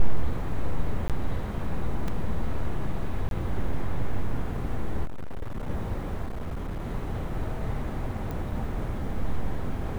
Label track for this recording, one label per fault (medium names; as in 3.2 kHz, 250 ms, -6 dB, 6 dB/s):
1.080000	1.100000	dropout 17 ms
2.080000	2.080000	dropout 2.8 ms
3.290000	3.310000	dropout 22 ms
5.050000	5.700000	clipped -28 dBFS
6.250000	6.820000	clipped -28.5 dBFS
8.310000	8.310000	pop